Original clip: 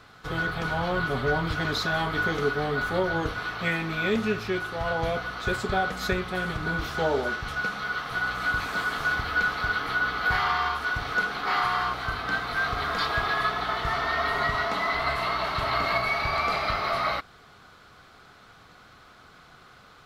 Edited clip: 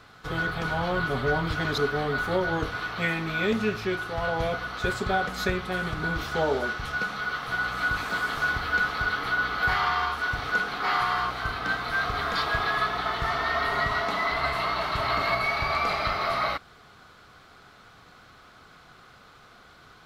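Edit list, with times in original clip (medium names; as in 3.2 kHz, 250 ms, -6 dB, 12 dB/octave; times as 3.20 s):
1.78–2.41 s: delete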